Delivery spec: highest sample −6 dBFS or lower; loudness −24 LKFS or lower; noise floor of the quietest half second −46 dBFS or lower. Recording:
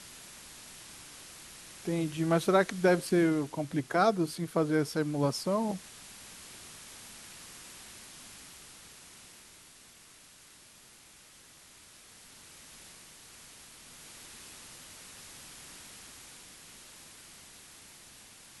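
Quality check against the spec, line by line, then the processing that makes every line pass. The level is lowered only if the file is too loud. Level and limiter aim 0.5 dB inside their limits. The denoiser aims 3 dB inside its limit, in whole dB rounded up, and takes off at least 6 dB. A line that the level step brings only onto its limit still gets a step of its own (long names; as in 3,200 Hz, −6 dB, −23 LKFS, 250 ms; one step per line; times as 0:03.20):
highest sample −11.5 dBFS: in spec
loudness −29.5 LKFS: in spec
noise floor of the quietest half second −56 dBFS: in spec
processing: no processing needed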